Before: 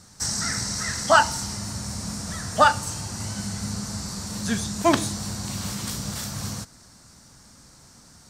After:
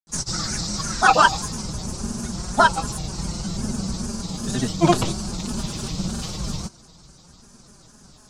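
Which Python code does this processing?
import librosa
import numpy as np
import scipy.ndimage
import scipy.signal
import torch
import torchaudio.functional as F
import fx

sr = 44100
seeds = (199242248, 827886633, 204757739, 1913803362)

y = fx.octave_divider(x, sr, octaves=1, level_db=2.0)
y = scipy.signal.sosfilt(scipy.signal.butter(2, 8300.0, 'lowpass', fs=sr, output='sos'), y)
y = fx.peak_eq(y, sr, hz=1800.0, db=-13.0, octaves=0.28)
y = y + 0.75 * np.pad(y, (int(5.5 * sr / 1000.0), 0))[:len(y)]
y = fx.granulator(y, sr, seeds[0], grain_ms=100.0, per_s=20.0, spray_ms=100.0, spread_st=3)
y = y * 10.0 ** (1.0 / 20.0)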